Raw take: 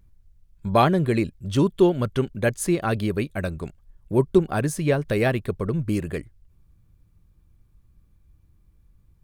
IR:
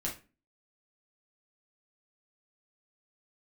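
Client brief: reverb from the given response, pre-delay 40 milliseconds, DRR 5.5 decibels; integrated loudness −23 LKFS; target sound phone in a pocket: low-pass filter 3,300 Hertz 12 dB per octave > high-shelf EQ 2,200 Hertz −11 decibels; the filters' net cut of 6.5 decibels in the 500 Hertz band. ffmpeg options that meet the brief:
-filter_complex "[0:a]equalizer=frequency=500:width_type=o:gain=-9,asplit=2[link_01][link_02];[1:a]atrim=start_sample=2205,adelay=40[link_03];[link_02][link_03]afir=irnorm=-1:irlink=0,volume=-8dB[link_04];[link_01][link_04]amix=inputs=2:normalize=0,lowpass=3300,highshelf=frequency=2200:gain=-11,volume=1.5dB"

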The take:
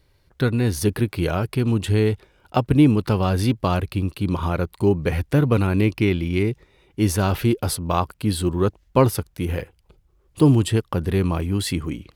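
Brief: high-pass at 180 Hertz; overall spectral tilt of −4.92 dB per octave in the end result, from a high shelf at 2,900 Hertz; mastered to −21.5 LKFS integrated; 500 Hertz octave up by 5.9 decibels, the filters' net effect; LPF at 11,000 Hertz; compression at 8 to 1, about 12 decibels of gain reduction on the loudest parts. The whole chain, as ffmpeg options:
ffmpeg -i in.wav -af "highpass=180,lowpass=11000,equalizer=frequency=500:width_type=o:gain=7.5,highshelf=frequency=2900:gain=5,acompressor=threshold=-19dB:ratio=8,volume=4dB" out.wav

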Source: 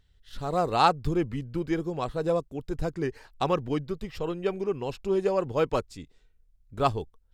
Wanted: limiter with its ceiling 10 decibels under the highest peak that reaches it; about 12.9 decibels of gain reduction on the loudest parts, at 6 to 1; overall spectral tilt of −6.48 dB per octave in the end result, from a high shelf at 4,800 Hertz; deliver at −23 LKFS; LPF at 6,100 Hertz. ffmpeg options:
ffmpeg -i in.wav -af "lowpass=6100,highshelf=frequency=4800:gain=-3,acompressor=threshold=-31dB:ratio=6,volume=16.5dB,alimiter=limit=-12dB:level=0:latency=1" out.wav

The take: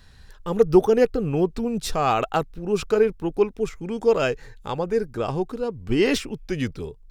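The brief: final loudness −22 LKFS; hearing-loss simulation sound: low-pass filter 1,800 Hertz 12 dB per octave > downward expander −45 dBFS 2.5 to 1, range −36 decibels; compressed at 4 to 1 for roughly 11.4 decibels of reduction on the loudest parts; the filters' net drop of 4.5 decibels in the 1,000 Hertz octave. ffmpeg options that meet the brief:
ffmpeg -i in.wav -af "equalizer=frequency=1000:width_type=o:gain=-6,acompressor=threshold=-25dB:ratio=4,lowpass=1800,agate=range=-36dB:threshold=-45dB:ratio=2.5,volume=9dB" out.wav

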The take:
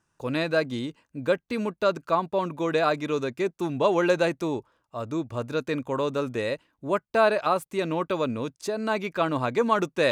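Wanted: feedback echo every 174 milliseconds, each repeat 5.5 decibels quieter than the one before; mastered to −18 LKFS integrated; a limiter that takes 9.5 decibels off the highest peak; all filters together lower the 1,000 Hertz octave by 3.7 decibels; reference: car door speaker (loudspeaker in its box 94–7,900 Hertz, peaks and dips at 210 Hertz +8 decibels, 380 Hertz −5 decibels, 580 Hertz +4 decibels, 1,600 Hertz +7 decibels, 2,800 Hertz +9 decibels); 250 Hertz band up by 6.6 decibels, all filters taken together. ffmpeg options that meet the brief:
ffmpeg -i in.wav -af "equalizer=frequency=250:width_type=o:gain=6,equalizer=frequency=1000:width_type=o:gain=-7,alimiter=limit=-20.5dB:level=0:latency=1,highpass=94,equalizer=frequency=210:width_type=q:width=4:gain=8,equalizer=frequency=380:width_type=q:width=4:gain=-5,equalizer=frequency=580:width_type=q:width=4:gain=4,equalizer=frequency=1600:width_type=q:width=4:gain=7,equalizer=frequency=2800:width_type=q:width=4:gain=9,lowpass=frequency=7900:width=0.5412,lowpass=frequency=7900:width=1.3066,aecho=1:1:174|348|522|696|870|1044|1218:0.531|0.281|0.149|0.079|0.0419|0.0222|0.0118,volume=8.5dB" out.wav

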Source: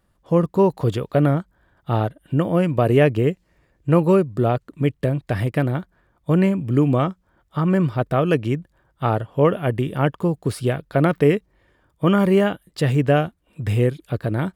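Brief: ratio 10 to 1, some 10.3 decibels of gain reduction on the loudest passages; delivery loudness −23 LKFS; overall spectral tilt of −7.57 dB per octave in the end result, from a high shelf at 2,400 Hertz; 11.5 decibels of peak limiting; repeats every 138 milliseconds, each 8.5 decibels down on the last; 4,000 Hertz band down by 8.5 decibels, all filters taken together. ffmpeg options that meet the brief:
ffmpeg -i in.wav -af "highshelf=frequency=2400:gain=-7.5,equalizer=frequency=4000:width_type=o:gain=-6,acompressor=threshold=-22dB:ratio=10,alimiter=limit=-23.5dB:level=0:latency=1,aecho=1:1:138|276|414|552:0.376|0.143|0.0543|0.0206,volume=9.5dB" out.wav

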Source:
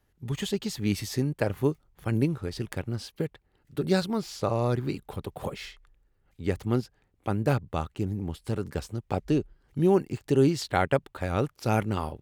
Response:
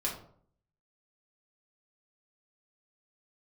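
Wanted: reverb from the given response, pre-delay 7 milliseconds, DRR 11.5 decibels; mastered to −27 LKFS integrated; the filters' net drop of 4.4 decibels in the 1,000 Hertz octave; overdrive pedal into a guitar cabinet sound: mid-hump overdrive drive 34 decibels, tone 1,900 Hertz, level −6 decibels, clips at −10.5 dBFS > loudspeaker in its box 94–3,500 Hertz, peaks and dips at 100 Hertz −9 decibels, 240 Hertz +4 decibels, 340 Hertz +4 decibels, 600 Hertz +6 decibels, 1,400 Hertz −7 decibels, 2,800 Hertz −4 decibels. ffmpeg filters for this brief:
-filter_complex "[0:a]equalizer=frequency=1000:width_type=o:gain=-7,asplit=2[link_01][link_02];[1:a]atrim=start_sample=2205,adelay=7[link_03];[link_02][link_03]afir=irnorm=-1:irlink=0,volume=-15.5dB[link_04];[link_01][link_04]amix=inputs=2:normalize=0,asplit=2[link_05][link_06];[link_06]highpass=frequency=720:poles=1,volume=34dB,asoftclip=type=tanh:threshold=-10.5dB[link_07];[link_05][link_07]amix=inputs=2:normalize=0,lowpass=frequency=1900:poles=1,volume=-6dB,highpass=94,equalizer=frequency=100:width_type=q:width=4:gain=-9,equalizer=frequency=240:width_type=q:width=4:gain=4,equalizer=frequency=340:width_type=q:width=4:gain=4,equalizer=frequency=600:width_type=q:width=4:gain=6,equalizer=frequency=1400:width_type=q:width=4:gain=-7,equalizer=frequency=2800:width_type=q:width=4:gain=-4,lowpass=frequency=3500:width=0.5412,lowpass=frequency=3500:width=1.3066,volume=-7.5dB"

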